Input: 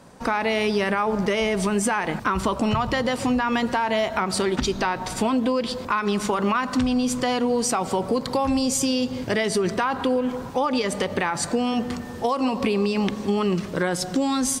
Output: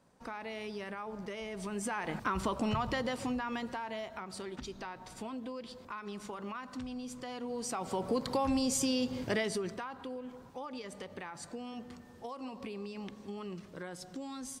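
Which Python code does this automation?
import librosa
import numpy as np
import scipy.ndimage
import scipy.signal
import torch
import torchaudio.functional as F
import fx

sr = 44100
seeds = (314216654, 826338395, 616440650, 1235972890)

y = fx.gain(x, sr, db=fx.line((1.47, -19.0), (2.17, -10.0), (2.9, -10.0), (4.23, -19.5), (7.29, -19.5), (8.16, -8.5), (9.36, -8.5), (9.93, -20.0)))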